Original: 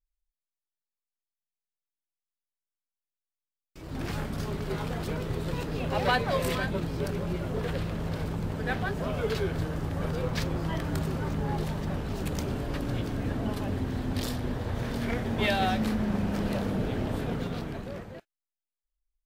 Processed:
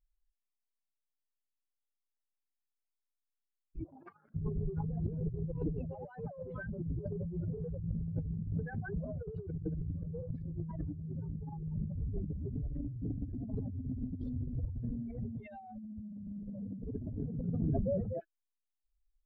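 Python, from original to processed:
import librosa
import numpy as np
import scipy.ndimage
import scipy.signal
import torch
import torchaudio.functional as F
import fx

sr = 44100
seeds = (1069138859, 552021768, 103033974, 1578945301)

y = fx.spec_expand(x, sr, power=3.4)
y = fx.over_compress(y, sr, threshold_db=-36.0, ratio=-0.5)
y = fx.highpass_res(y, sr, hz=fx.line((3.83, 730.0), (4.34, 1600.0)), q=7.3, at=(3.83, 4.34), fade=0.02)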